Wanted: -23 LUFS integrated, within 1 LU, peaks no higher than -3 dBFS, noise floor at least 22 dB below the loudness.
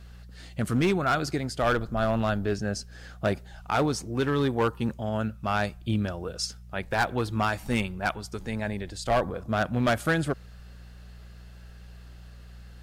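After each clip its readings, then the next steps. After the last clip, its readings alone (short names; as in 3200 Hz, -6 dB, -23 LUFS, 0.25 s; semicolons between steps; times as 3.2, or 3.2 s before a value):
clipped 1.1%; flat tops at -18.0 dBFS; hum 60 Hz; harmonics up to 180 Hz; hum level -44 dBFS; loudness -28.0 LUFS; peak -18.0 dBFS; loudness target -23.0 LUFS
-> clip repair -18 dBFS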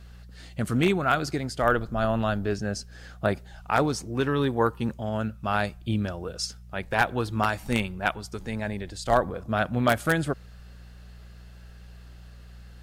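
clipped 0.0%; hum 60 Hz; harmonics up to 180 Hz; hum level -44 dBFS
-> de-hum 60 Hz, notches 3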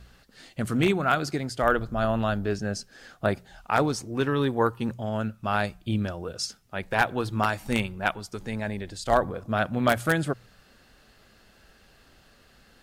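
hum none; loudness -27.5 LUFS; peak -8.5 dBFS; loudness target -23.0 LUFS
-> gain +4.5 dB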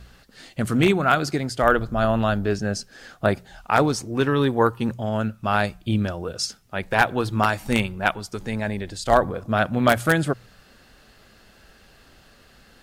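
loudness -23.0 LUFS; peak -4.0 dBFS; noise floor -54 dBFS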